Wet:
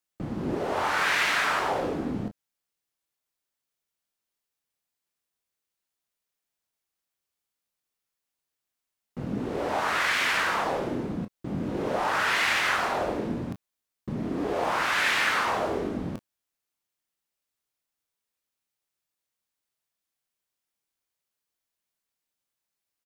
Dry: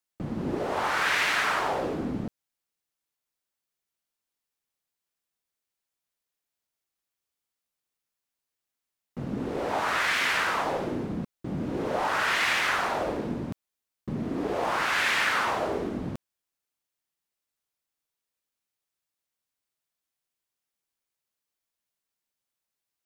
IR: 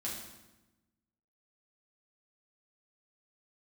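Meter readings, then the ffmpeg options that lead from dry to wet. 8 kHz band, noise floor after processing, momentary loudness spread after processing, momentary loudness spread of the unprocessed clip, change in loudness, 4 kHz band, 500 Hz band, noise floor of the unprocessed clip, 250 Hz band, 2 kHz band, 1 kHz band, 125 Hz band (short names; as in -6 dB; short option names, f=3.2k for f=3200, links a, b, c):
+0.5 dB, under -85 dBFS, 13 LU, 13 LU, +0.5 dB, +0.5 dB, +0.5 dB, under -85 dBFS, +0.5 dB, +0.5 dB, +0.5 dB, +0.5 dB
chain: -af "aecho=1:1:24|34:0.335|0.224"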